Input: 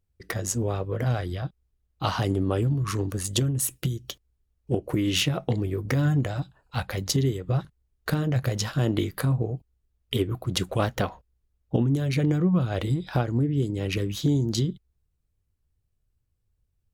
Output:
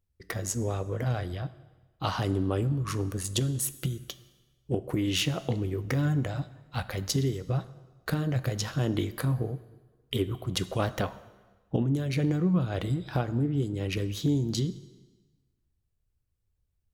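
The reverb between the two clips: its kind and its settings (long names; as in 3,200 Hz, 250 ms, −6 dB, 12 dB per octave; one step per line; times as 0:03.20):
dense smooth reverb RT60 1.3 s, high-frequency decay 0.9×, DRR 14 dB
level −3.5 dB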